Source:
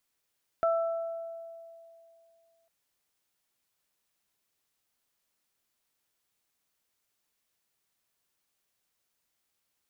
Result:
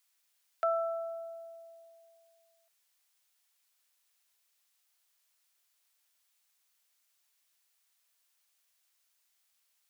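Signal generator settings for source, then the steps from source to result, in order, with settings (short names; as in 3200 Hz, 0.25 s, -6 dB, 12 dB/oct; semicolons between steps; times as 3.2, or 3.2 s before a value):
additive tone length 2.05 s, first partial 665 Hz, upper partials -6 dB, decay 2.62 s, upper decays 1.18 s, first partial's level -22.5 dB
HPF 520 Hz 24 dB/oct; tilt shelf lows -5 dB, about 1200 Hz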